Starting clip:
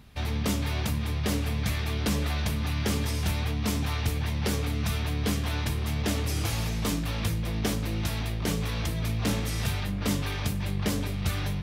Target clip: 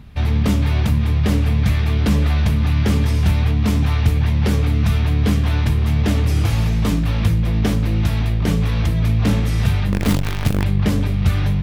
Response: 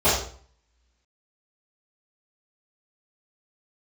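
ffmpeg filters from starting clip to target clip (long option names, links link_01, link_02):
-filter_complex "[0:a]asettb=1/sr,asplit=3[link_01][link_02][link_03];[link_01]atrim=end=9.924[link_04];[link_02]atrim=start=9.92:end=10.64,asetpts=PTS-STARTPTS,afade=type=in:duration=0.004:curve=qsin,afade=type=out:start_time=0.716:duration=0.004:curve=qsin,acrusher=bits=5:dc=4:mix=0:aa=0.000001[link_05];[link_03]atrim=start=10.636[link_06];[link_04][link_05]acrossfade=duration=0.004:curve1=hsin:curve2=qsin[link_07];[link_07][link_06]acrossfade=duration=0.004:curve1=qsin:curve2=hsin,bass=frequency=250:gain=7,treble=frequency=4000:gain=-7,volume=6dB"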